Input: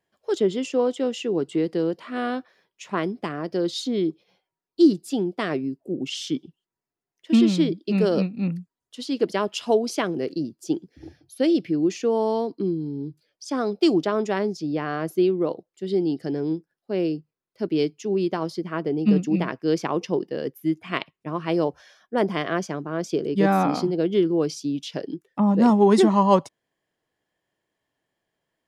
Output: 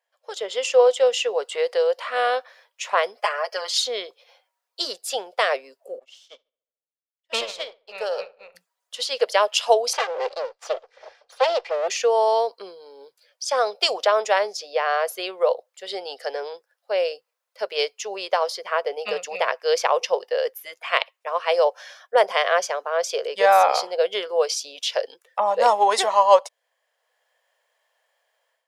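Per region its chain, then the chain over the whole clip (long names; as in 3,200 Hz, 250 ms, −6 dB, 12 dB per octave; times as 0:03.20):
0:03.17–0:03.78: high-pass filter 610 Hz + notch filter 3,700 Hz, Q 5.2 + comb filter 4.8 ms, depth 85%
0:05.99–0:08.55: gain on one half-wave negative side −3 dB + feedback echo with a low-pass in the loop 71 ms, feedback 68%, low-pass 2,800 Hz, level −11.5 dB + expander for the loud parts 2.5 to 1, over −41 dBFS
0:09.93–0:11.88: lower of the sound and its delayed copy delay 2.5 ms + high-frequency loss of the air 100 metres
whole clip: elliptic high-pass filter 510 Hz, stop band 40 dB; dynamic equaliser 1,300 Hz, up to −4 dB, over −39 dBFS, Q 0.99; automatic gain control gain up to 11 dB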